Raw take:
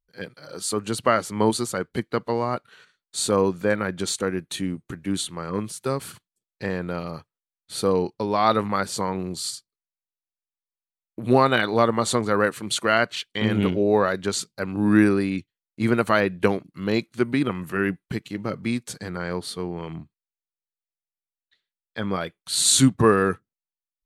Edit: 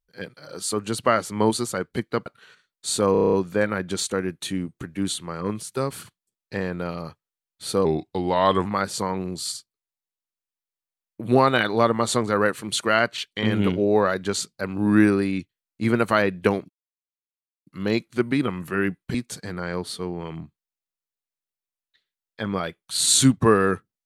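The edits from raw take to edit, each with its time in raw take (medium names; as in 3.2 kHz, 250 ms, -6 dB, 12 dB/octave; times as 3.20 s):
2.26–2.56 s: delete
3.42 s: stutter 0.03 s, 8 plays
7.94–8.64 s: speed 87%
16.68 s: insert silence 0.97 s
18.16–18.72 s: delete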